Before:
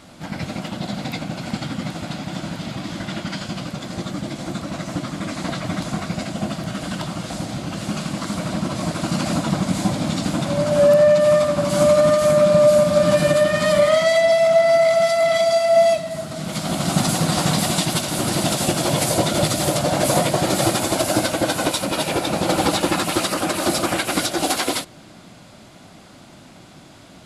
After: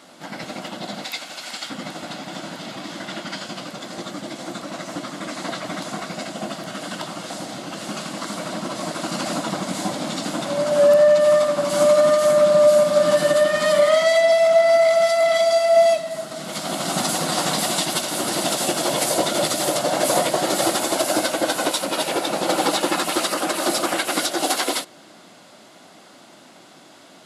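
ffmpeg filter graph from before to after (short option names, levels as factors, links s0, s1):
-filter_complex "[0:a]asettb=1/sr,asplit=3[s0][s1][s2];[s0]atrim=end=1.044[s3];[s1]atrim=start=1.04:end=1.7,asetpts=PTS-STARTPTS,afade=t=in:d=0.004:c=qsin,afade=t=out:st=0.656:d=0.004:c=qsin,highpass=f=570:p=1,tiltshelf=f=1400:g=-5.5[s4];[s2]atrim=start=1.696[s5];[s3][s4]acrossfade=d=0.004:c1=hsin:c2=qsin[s6];[s6][s5]acrossfade=d=0.004:c1=qsin:c2=hsin,highpass=300,bandreject=f=2400:w=17"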